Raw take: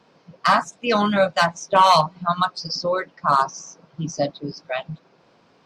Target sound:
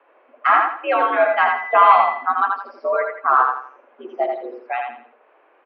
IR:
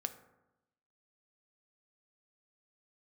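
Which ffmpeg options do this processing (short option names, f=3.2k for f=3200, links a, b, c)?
-filter_complex "[0:a]highpass=f=310:t=q:w=0.5412,highpass=f=310:t=q:w=1.307,lowpass=f=2.5k:t=q:w=0.5176,lowpass=f=2.5k:t=q:w=0.7071,lowpass=f=2.5k:t=q:w=1.932,afreqshift=78,asettb=1/sr,asplit=3[a][b][c];[a]atrim=end=1.264[d];[b]atrim=start=1.26:end=2.15,asetpts=PTS-STARTPTS,afade=t=in:d=0.004:c=qsin,afade=t=out:st=0.886:d=0.004:c=qsin,aeval=exprs='val(0)+0.0178*sin(2*PI*2000*n/s)':c=same[e];[c]atrim=start=2.146[f];[d][e]acrossfade=d=0.004:c1=hsin:c2=qsin[g];[g][f]acrossfade=d=0.004:c1=qsin:c2=hsin,aecho=1:1:83|166|249|332:0.631|0.208|0.0687|0.0227,volume=1.5dB"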